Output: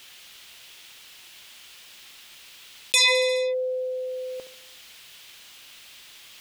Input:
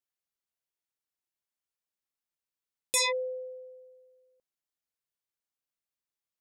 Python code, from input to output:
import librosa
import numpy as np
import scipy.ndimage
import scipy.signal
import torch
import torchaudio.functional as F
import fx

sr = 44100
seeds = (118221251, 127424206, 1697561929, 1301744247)

y = fx.peak_eq(x, sr, hz=3100.0, db=15.0, octaves=1.6)
y = fx.echo_feedback(y, sr, ms=70, feedback_pct=55, wet_db=-13.5)
y = fx.env_flatten(y, sr, amount_pct=70)
y = F.gain(torch.from_numpy(y), -2.0).numpy()